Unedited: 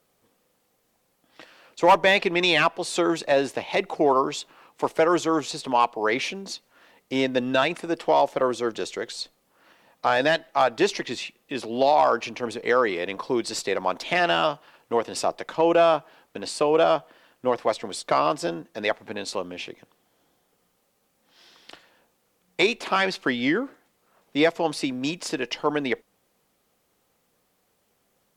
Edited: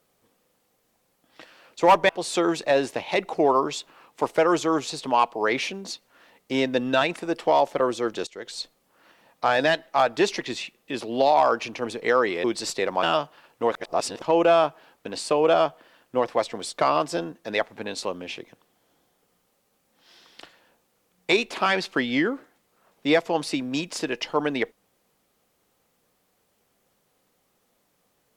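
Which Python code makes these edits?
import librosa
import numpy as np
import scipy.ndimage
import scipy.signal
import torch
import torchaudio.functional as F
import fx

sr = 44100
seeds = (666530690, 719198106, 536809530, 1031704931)

y = fx.edit(x, sr, fx.cut(start_s=2.09, length_s=0.61),
    fx.fade_in_from(start_s=8.88, length_s=0.31, floor_db=-21.0),
    fx.cut(start_s=13.05, length_s=0.28),
    fx.cut(start_s=13.92, length_s=0.41),
    fx.reverse_span(start_s=15.02, length_s=0.5), tone=tone)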